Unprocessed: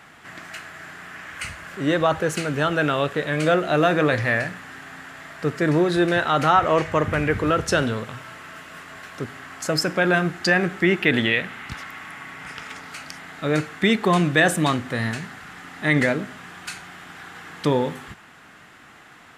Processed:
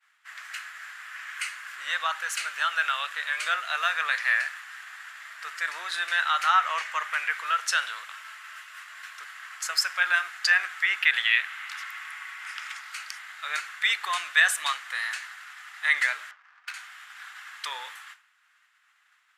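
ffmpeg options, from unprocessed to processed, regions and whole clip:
ffmpeg -i in.wav -filter_complex "[0:a]asettb=1/sr,asplit=3[link_01][link_02][link_03];[link_01]atrim=end=16.314[link_04];[link_02]atrim=start=16.31:end=16.74,asetpts=PTS-STARTPTS,afade=type=in:duration=0.004:curve=qsin,afade=type=out:start_time=0.426:duration=0.004:curve=qsin,highshelf=frequency=9100:gain=-2,adynamicsmooth=sensitivity=3.5:basefreq=1100[link_05];[link_03]atrim=start=16.736[link_06];[link_04][link_05]acrossfade=duration=0.004:curve1=hsin:curve2=qsin[link_07];[link_07][link_06]acrossfade=duration=0.004:curve1=qsin:curve2=hsin,highpass=frequency=1200:width=0.5412,highpass=frequency=1200:width=1.3066,agate=range=-33dB:threshold=-39dB:ratio=3:detection=peak" out.wav

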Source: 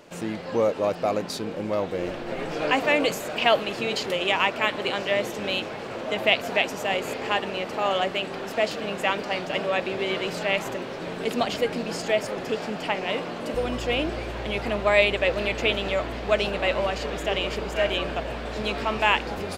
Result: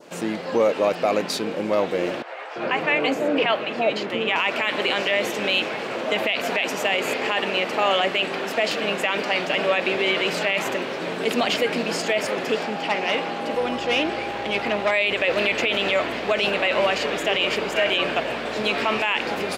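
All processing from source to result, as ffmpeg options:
ffmpeg -i in.wav -filter_complex "[0:a]asettb=1/sr,asplit=3[link_01][link_02][link_03];[link_01]atrim=end=2.224[link_04];[link_02]atrim=start=2.22:end=4.36,asetpts=PTS-STARTPTS,afade=type=in:duration=0.004:curve=qsin,afade=type=out:start_time=2.136:duration=0.004:curve=qsin,lowpass=frequency=1300:poles=1,acrossover=split=660[link_05][link_06];[link_05]adelay=340[link_07];[link_07][link_06]amix=inputs=2:normalize=0,atrim=end_sample=94374[link_08];[link_03]atrim=start=4.356[link_09];[link_04][link_08]acrossfade=duration=0.004:curve1=hsin:curve2=qsin[link_10];[link_10][link_09]acrossfade=duration=0.004:curve1=qsin:curve2=hsin,asettb=1/sr,asplit=3[link_11][link_12][link_13];[link_11]atrim=end=12.634[link_14];[link_12]atrim=start=12.63:end=14.91,asetpts=PTS-STARTPTS,afade=type=in:duration=0.004:curve=qsin,afade=type=out:start_time=2.276:duration=0.004:curve=qsin,acrossover=split=5700[link_15][link_16];[link_16]acompressor=threshold=-57dB:ratio=4:attack=1:release=60[link_17];[link_15][link_17]amix=inputs=2:normalize=0,aeval=exprs='(tanh(10*val(0)+0.4)-tanh(0.4))/10':channel_layout=same,aeval=exprs='val(0)+0.0141*sin(2*PI*810*n/s)':channel_layout=same[link_18];[link_13]atrim=start=14.906[link_19];[link_14][link_18]acrossfade=duration=0.004:curve1=hsin:curve2=qsin[link_20];[link_20][link_19]acrossfade=duration=0.004:curve1=qsin:curve2=hsin,highpass=190,adynamicequalizer=threshold=0.0141:dfrequency=2400:dqfactor=1.2:tfrequency=2400:tqfactor=1.2:attack=5:release=100:ratio=0.375:range=3:mode=boostabove:tftype=bell,alimiter=limit=-15.5dB:level=0:latency=1:release=26,volume=5dB" out.wav

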